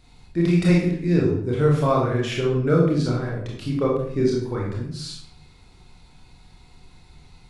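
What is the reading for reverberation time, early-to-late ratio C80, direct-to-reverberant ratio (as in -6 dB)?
0.65 s, 6.0 dB, -4.0 dB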